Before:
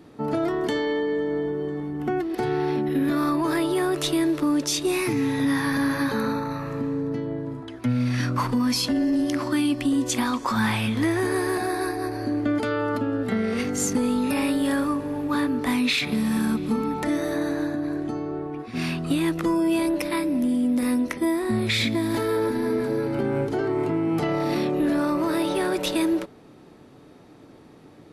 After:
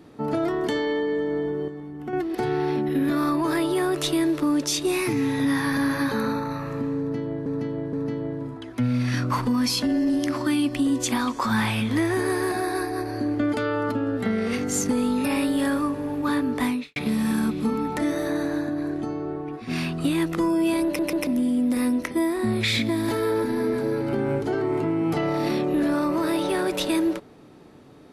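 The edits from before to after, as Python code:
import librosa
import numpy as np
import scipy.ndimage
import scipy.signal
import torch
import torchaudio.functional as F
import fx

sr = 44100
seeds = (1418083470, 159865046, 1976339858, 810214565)

y = fx.studio_fade_out(x, sr, start_s=15.68, length_s=0.34)
y = fx.edit(y, sr, fx.clip_gain(start_s=1.68, length_s=0.45, db=-6.5),
    fx.repeat(start_s=6.99, length_s=0.47, count=3),
    fx.stutter_over(start_s=19.91, slice_s=0.14, count=3), tone=tone)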